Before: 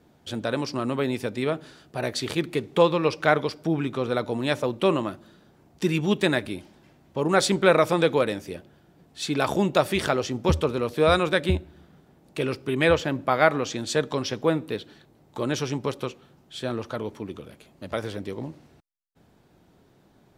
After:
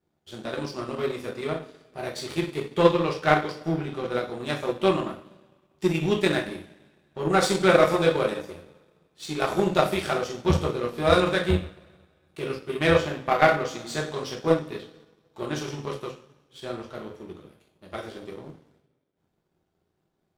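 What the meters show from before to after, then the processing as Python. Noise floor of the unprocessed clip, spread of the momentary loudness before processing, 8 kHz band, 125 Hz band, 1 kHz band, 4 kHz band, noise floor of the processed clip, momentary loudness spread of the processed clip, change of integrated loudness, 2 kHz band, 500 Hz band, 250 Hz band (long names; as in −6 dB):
−59 dBFS, 14 LU, −3.0 dB, −1.0 dB, +0.5 dB, −1.5 dB, −75 dBFS, 19 LU, 0.0 dB, −0.5 dB, −0.5 dB, −1.5 dB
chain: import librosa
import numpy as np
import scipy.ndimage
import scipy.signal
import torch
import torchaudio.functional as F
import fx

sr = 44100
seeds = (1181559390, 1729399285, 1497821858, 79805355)

y = fx.rev_double_slope(x, sr, seeds[0], early_s=0.47, late_s=2.3, knee_db=-18, drr_db=-3.5)
y = fx.power_curve(y, sr, exponent=1.4)
y = F.gain(torch.from_numpy(y), -1.5).numpy()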